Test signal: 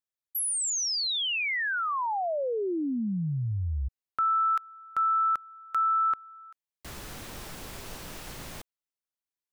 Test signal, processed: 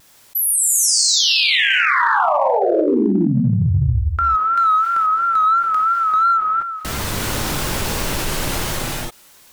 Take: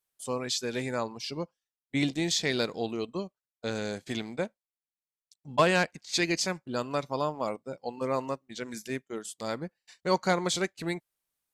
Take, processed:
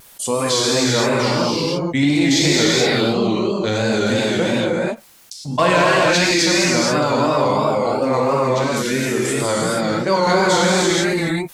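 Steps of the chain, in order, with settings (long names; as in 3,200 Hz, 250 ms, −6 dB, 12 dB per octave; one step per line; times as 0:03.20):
reverb whose tail is shaped and stops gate 500 ms flat, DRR −6.5 dB
in parallel at −12 dB: hard clipping −19 dBFS
on the sum: pitch vibrato 2.9 Hz 69 cents
envelope flattener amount 50%
level +2.5 dB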